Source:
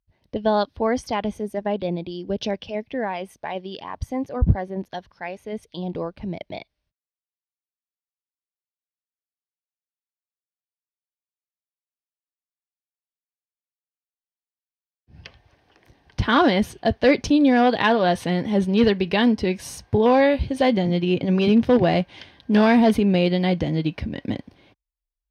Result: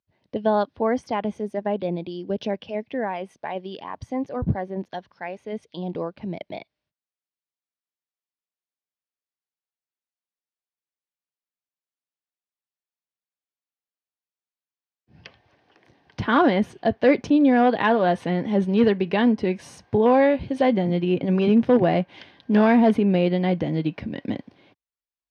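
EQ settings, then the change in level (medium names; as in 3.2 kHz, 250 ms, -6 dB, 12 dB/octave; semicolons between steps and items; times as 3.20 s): high-pass 140 Hz 12 dB/octave; dynamic bell 4.6 kHz, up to -8 dB, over -43 dBFS, Q 0.85; distance through air 79 m; 0.0 dB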